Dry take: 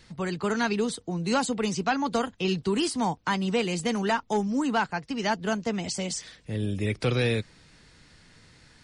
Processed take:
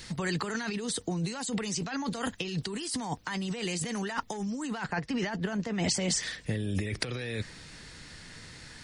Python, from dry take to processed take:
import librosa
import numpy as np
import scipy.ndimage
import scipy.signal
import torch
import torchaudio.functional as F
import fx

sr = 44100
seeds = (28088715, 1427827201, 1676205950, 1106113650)

y = fx.high_shelf(x, sr, hz=4000.0, db=fx.steps((0.0, 10.5), (4.83, -3.5), (6.21, 5.0)))
y = fx.over_compress(y, sr, threshold_db=-33.0, ratio=-1.0)
y = fx.dynamic_eq(y, sr, hz=1800.0, q=4.3, threshold_db=-58.0, ratio=4.0, max_db=7)